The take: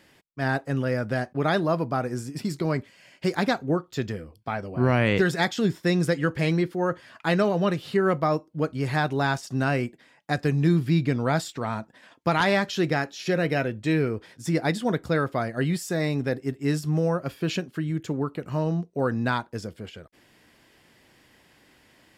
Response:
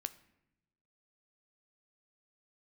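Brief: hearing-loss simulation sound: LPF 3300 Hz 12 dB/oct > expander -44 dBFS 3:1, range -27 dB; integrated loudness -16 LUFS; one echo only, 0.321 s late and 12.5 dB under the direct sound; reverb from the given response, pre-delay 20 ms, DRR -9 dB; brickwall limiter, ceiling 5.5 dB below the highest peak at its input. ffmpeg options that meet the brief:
-filter_complex "[0:a]alimiter=limit=-15dB:level=0:latency=1,aecho=1:1:321:0.237,asplit=2[a][b];[1:a]atrim=start_sample=2205,adelay=20[c];[b][c]afir=irnorm=-1:irlink=0,volume=11dB[d];[a][d]amix=inputs=2:normalize=0,lowpass=3.3k,agate=range=-27dB:threshold=-44dB:ratio=3,volume=1.5dB"

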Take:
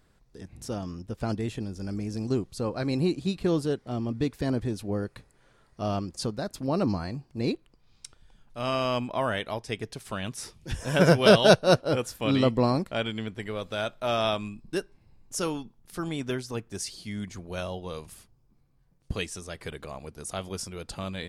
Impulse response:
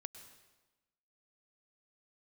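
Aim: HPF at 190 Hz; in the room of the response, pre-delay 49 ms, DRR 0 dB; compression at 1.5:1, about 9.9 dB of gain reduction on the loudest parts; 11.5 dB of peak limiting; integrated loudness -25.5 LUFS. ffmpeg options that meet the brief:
-filter_complex "[0:a]highpass=190,acompressor=threshold=-40dB:ratio=1.5,alimiter=level_in=2dB:limit=-24dB:level=0:latency=1,volume=-2dB,asplit=2[a][b];[1:a]atrim=start_sample=2205,adelay=49[c];[b][c]afir=irnorm=-1:irlink=0,volume=4.5dB[d];[a][d]amix=inputs=2:normalize=0,volume=10.5dB"

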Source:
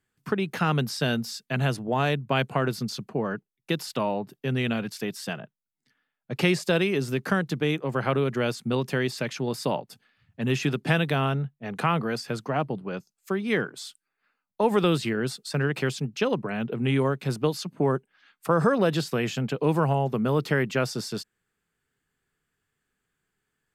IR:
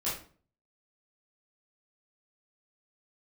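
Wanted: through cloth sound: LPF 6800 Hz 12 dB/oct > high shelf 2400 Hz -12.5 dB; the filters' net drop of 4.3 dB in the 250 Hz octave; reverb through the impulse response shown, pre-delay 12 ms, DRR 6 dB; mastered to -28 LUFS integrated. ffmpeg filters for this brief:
-filter_complex "[0:a]equalizer=f=250:t=o:g=-6,asplit=2[a][b];[1:a]atrim=start_sample=2205,adelay=12[c];[b][c]afir=irnorm=-1:irlink=0,volume=-11.5dB[d];[a][d]amix=inputs=2:normalize=0,lowpass=6.8k,highshelf=f=2.4k:g=-12.5,volume=0.5dB"

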